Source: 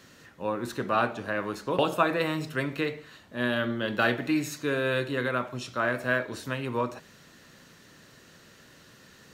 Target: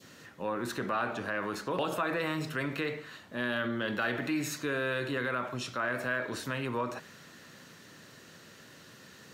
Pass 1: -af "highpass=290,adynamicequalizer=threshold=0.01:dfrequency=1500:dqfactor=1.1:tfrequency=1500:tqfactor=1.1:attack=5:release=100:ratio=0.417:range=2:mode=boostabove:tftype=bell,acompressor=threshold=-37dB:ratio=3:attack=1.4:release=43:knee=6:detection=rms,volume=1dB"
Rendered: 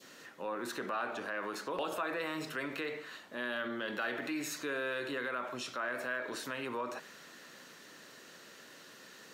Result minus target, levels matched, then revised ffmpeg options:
125 Hz band −10.0 dB; downward compressor: peak gain reduction +4.5 dB
-af "highpass=90,adynamicequalizer=threshold=0.01:dfrequency=1500:dqfactor=1.1:tfrequency=1500:tqfactor=1.1:attack=5:release=100:ratio=0.417:range=2:mode=boostabove:tftype=bell,acompressor=threshold=-30dB:ratio=3:attack=1.4:release=43:knee=6:detection=rms,volume=1dB"

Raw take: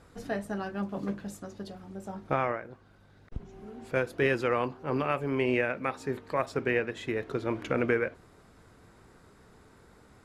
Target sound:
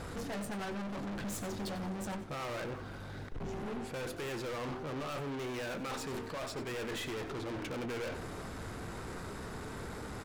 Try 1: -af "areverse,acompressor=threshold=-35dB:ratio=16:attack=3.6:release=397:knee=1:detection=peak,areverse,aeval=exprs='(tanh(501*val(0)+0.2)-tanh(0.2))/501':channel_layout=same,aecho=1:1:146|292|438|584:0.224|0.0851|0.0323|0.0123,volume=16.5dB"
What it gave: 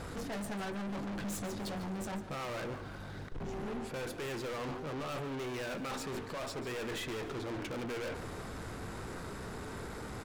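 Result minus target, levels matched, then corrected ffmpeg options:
echo 54 ms late
-af "areverse,acompressor=threshold=-35dB:ratio=16:attack=3.6:release=397:knee=1:detection=peak,areverse,aeval=exprs='(tanh(501*val(0)+0.2)-tanh(0.2))/501':channel_layout=same,aecho=1:1:92|184|276|368:0.224|0.0851|0.0323|0.0123,volume=16.5dB"

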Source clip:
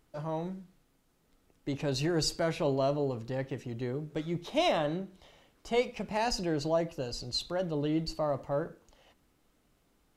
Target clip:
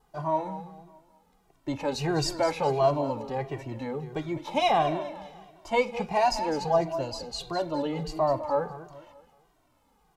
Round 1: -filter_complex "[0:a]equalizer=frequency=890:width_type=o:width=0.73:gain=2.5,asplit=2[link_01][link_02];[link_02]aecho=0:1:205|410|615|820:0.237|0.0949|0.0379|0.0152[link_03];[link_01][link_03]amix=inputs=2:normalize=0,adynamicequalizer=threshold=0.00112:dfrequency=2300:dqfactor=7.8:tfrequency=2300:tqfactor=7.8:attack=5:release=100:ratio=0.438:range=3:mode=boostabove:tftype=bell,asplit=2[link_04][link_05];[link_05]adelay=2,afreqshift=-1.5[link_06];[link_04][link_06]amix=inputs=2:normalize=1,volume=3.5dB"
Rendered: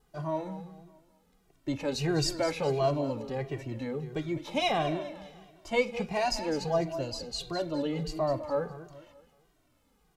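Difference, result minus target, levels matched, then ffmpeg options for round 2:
1,000 Hz band −4.0 dB
-filter_complex "[0:a]equalizer=frequency=890:width_type=o:width=0.73:gain=13,asplit=2[link_01][link_02];[link_02]aecho=0:1:205|410|615|820:0.237|0.0949|0.0379|0.0152[link_03];[link_01][link_03]amix=inputs=2:normalize=0,adynamicequalizer=threshold=0.00112:dfrequency=2300:dqfactor=7.8:tfrequency=2300:tqfactor=7.8:attack=5:release=100:ratio=0.438:range=3:mode=boostabove:tftype=bell,asplit=2[link_04][link_05];[link_05]adelay=2,afreqshift=-1.5[link_06];[link_04][link_06]amix=inputs=2:normalize=1,volume=3.5dB"

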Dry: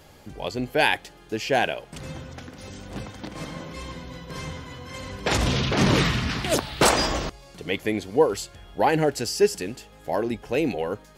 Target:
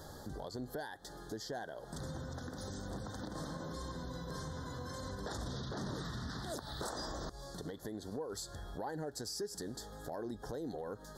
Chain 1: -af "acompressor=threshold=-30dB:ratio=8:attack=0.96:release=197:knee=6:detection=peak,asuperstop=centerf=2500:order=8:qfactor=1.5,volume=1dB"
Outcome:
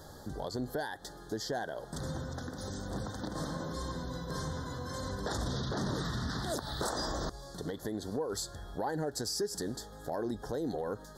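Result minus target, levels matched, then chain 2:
downward compressor: peak gain reduction −6.5 dB
-af "acompressor=threshold=-37.5dB:ratio=8:attack=0.96:release=197:knee=6:detection=peak,asuperstop=centerf=2500:order=8:qfactor=1.5,volume=1dB"

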